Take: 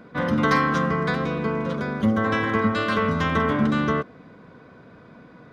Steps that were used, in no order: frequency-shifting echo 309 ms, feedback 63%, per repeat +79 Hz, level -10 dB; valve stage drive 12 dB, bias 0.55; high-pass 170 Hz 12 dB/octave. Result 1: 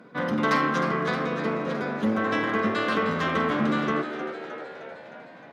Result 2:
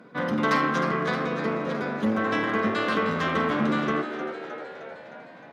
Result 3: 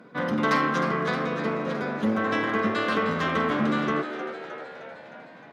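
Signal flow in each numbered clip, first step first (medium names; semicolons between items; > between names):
valve stage > frequency-shifting echo > high-pass; frequency-shifting echo > valve stage > high-pass; valve stage > high-pass > frequency-shifting echo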